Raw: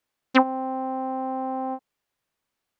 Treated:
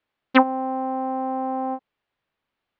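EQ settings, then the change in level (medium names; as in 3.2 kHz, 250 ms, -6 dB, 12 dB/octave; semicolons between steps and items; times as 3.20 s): low-pass 3.8 kHz 24 dB/octave; +2.5 dB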